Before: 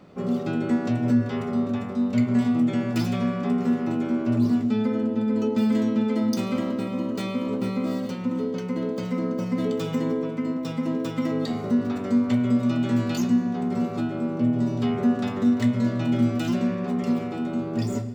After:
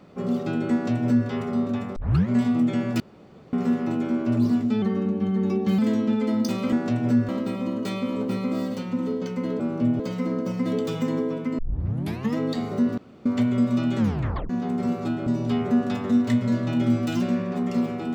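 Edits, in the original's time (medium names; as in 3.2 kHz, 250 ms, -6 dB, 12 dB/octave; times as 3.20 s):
0.72–1.28 s: copy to 6.61 s
1.96 s: tape start 0.33 s
3.00–3.53 s: room tone
4.82–5.67 s: speed 88%
10.51 s: tape start 0.78 s
11.90–12.18 s: room tone
12.91 s: tape stop 0.51 s
14.19–14.59 s: move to 8.92 s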